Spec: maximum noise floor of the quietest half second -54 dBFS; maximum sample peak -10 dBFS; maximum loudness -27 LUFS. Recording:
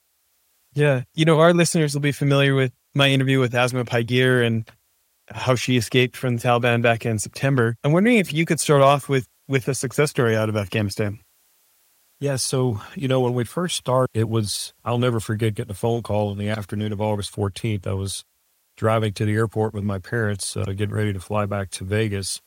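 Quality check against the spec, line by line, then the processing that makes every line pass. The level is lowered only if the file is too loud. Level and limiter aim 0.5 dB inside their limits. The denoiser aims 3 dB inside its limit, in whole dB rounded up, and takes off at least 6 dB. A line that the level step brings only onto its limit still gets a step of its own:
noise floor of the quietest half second -66 dBFS: OK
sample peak -2.0 dBFS: fail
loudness -21.5 LUFS: fail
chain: gain -6 dB; limiter -10.5 dBFS

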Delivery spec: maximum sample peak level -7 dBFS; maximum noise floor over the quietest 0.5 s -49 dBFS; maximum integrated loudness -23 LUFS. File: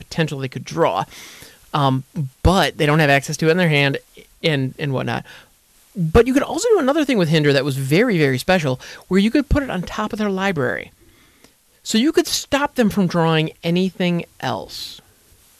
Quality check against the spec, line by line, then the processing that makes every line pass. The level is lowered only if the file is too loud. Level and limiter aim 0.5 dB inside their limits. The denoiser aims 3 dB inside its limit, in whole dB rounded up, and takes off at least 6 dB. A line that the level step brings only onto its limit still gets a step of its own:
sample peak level -4.5 dBFS: fail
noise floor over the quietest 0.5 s -54 dBFS: OK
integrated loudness -18.5 LUFS: fail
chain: gain -5 dB

